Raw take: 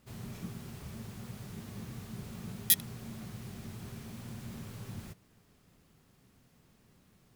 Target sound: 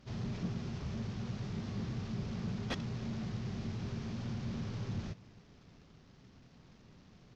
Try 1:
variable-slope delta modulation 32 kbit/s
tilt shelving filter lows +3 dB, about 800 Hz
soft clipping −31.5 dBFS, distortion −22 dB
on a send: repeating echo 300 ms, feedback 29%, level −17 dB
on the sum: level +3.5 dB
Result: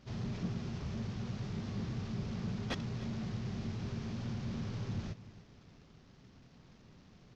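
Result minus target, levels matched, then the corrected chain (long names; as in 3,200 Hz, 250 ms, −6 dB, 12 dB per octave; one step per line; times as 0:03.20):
echo-to-direct +7.5 dB
variable-slope delta modulation 32 kbit/s
tilt shelving filter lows +3 dB, about 800 Hz
soft clipping −31.5 dBFS, distortion −22 dB
on a send: repeating echo 300 ms, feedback 29%, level −24.5 dB
on the sum: level +3.5 dB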